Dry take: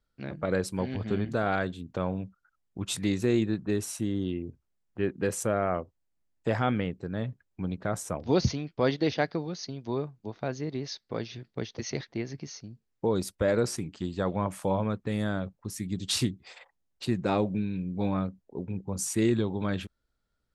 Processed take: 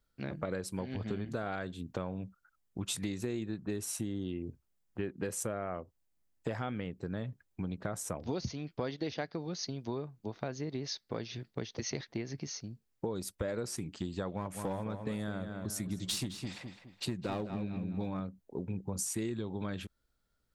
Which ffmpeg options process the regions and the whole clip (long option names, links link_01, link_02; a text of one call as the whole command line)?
ffmpeg -i in.wav -filter_complex "[0:a]asettb=1/sr,asplit=3[link_01][link_02][link_03];[link_01]atrim=end=14.334[link_04];[link_02]atrim=start=14.33:end=18.2,asetpts=PTS-STARTPTS,afade=type=in:duration=0.004:curve=qsin,afade=type=out:start_time=3.866:duration=0.004:curve=qsin,aeval=exprs='clip(val(0),-1,0.0596)':channel_layout=same,asplit=2[link_05][link_06];[link_06]adelay=209,lowpass=frequency=4100:poles=1,volume=-9.5dB,asplit=2[link_07][link_08];[link_08]adelay=209,lowpass=frequency=4100:poles=1,volume=0.36,asplit=2[link_09][link_10];[link_10]adelay=209,lowpass=frequency=4100:poles=1,volume=0.36,asplit=2[link_11][link_12];[link_12]adelay=209,lowpass=frequency=4100:poles=1,volume=0.36[link_13];[link_05][link_07][link_09][link_11][link_13]amix=inputs=5:normalize=0,atrim=end_sample=170667[link_14];[link_03]atrim=start=18.196[link_15];[link_04][link_14]acrossfade=duration=0.004:curve1=hsin:curve2=qsin[link_16];[link_16][link_15]acrossfade=duration=0.004:curve1=qsin:curve2=hsin,highshelf=frequency=7900:gain=6.5,acompressor=threshold=-33dB:ratio=6" out.wav